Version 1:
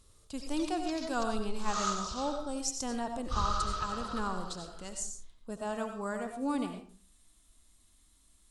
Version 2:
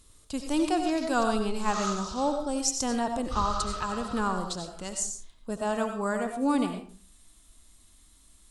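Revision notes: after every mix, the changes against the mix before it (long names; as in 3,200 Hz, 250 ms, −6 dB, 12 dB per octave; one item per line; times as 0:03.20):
speech +7.0 dB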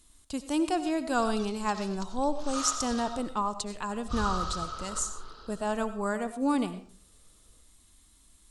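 speech: send −7.0 dB
background: entry +0.80 s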